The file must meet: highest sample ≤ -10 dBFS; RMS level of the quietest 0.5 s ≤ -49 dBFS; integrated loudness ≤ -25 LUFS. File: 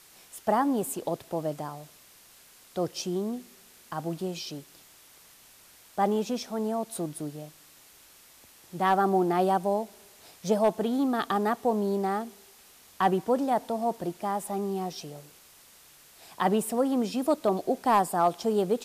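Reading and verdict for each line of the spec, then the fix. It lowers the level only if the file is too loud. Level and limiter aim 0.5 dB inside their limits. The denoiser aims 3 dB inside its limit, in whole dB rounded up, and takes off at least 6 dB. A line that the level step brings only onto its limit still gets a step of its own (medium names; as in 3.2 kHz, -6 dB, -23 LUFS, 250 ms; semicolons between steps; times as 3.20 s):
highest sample -13.5 dBFS: pass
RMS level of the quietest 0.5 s -55 dBFS: pass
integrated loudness -28.5 LUFS: pass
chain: none needed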